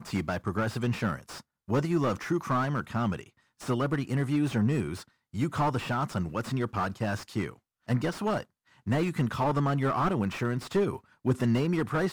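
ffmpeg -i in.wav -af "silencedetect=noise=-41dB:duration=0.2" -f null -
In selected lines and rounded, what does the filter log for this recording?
silence_start: 1.40
silence_end: 1.68 | silence_duration: 0.28
silence_start: 3.23
silence_end: 3.61 | silence_duration: 0.37
silence_start: 5.03
silence_end: 5.34 | silence_duration: 0.31
silence_start: 7.53
silence_end: 7.88 | silence_duration: 0.35
silence_start: 8.43
silence_end: 8.87 | silence_duration: 0.44
silence_start: 10.98
silence_end: 11.25 | silence_duration: 0.27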